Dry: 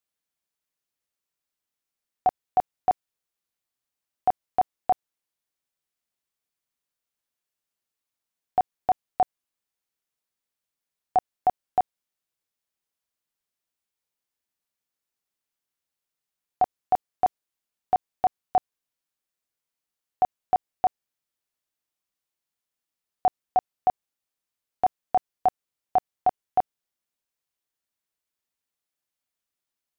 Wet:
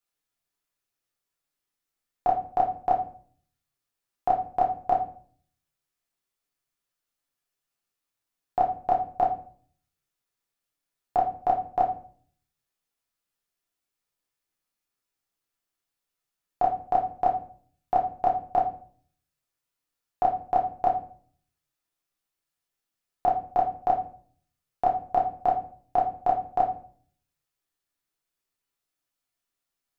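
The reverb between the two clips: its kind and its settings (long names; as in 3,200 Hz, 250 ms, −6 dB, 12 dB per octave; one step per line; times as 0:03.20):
rectangular room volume 49 cubic metres, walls mixed, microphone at 0.7 metres
level −2 dB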